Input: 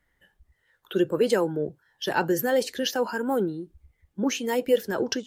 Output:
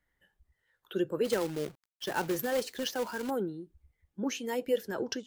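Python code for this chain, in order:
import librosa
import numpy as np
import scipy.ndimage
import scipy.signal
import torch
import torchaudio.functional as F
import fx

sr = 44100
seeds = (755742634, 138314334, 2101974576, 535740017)

y = fx.quant_companded(x, sr, bits=4, at=(1.24, 3.29), fade=0.02)
y = y * 10.0 ** (-7.5 / 20.0)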